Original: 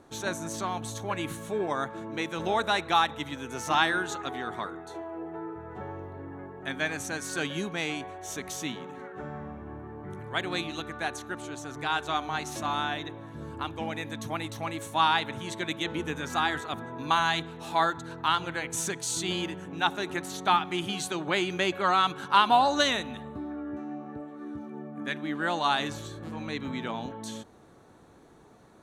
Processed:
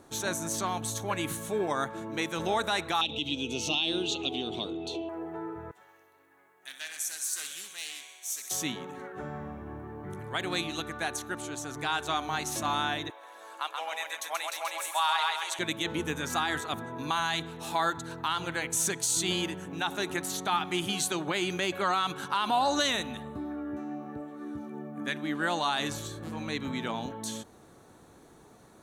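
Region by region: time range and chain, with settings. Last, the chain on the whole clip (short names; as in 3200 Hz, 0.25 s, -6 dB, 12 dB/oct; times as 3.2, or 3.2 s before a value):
3.01–5.09 EQ curve 180 Hz 0 dB, 290 Hz +5 dB, 690 Hz -3 dB, 1800 Hz -26 dB, 2700 Hz +13 dB, 4100 Hz +7 dB, 11000 Hz -17 dB + upward compressor, threshold -29 dBFS
5.71–8.51 differentiator + thinning echo 64 ms, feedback 73%, level -9 dB + Doppler distortion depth 0.18 ms
13.1–15.59 HPF 610 Hz 24 dB/oct + feedback echo 0.131 s, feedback 37%, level -4 dB
whole clip: high shelf 6400 Hz +10.5 dB; limiter -17.5 dBFS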